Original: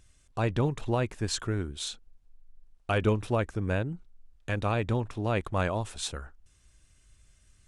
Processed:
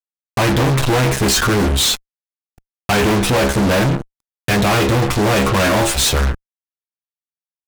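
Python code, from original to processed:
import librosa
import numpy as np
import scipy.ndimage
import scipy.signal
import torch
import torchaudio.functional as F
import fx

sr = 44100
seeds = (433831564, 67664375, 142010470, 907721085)

y = fx.diode_clip(x, sr, knee_db=-23.5)
y = fx.stiff_resonator(y, sr, f0_hz=66.0, decay_s=0.3, stiffness=0.002)
y = fx.fuzz(y, sr, gain_db=58.0, gate_db=-56.0)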